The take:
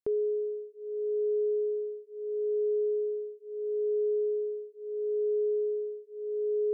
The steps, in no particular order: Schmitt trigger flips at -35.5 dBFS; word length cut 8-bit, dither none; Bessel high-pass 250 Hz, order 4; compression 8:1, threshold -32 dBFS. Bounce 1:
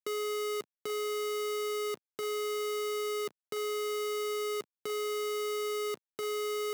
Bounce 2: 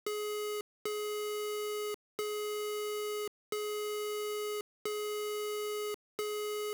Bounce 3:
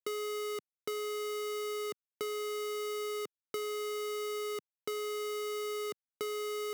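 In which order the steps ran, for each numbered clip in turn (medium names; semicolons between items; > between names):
Schmitt trigger > compression > word length cut > Bessel high-pass; Schmitt trigger > Bessel high-pass > compression > word length cut; word length cut > Schmitt trigger > Bessel high-pass > compression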